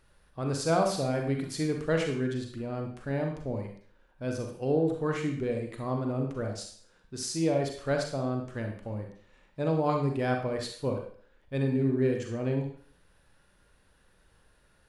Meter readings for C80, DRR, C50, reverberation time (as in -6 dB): 8.5 dB, 2.5 dB, 4.5 dB, 0.50 s